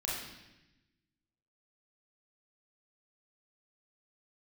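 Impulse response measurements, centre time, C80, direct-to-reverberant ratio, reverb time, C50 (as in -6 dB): 70 ms, 3.5 dB, -5.0 dB, 0.95 s, 0.5 dB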